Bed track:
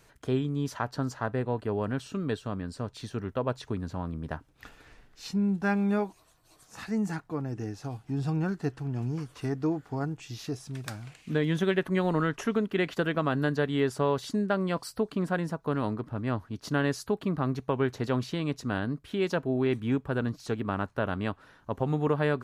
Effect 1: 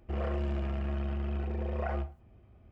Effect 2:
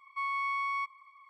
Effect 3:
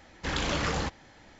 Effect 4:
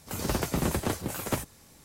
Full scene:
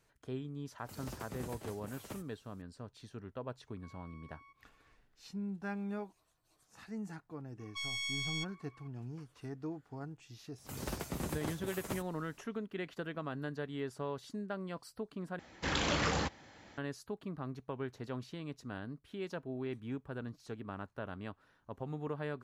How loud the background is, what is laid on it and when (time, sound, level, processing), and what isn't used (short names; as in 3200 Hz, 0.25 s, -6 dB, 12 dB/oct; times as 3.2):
bed track -13 dB
0.78 add 4 -17.5 dB
3.67 add 2 -17.5 dB + compressor, threshold -40 dBFS
7.59 add 2 -5.5 dB + self-modulated delay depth 0.28 ms
10.58 add 4 -11 dB
15.39 replace with 3 -2.5 dB + HPF 70 Hz
not used: 1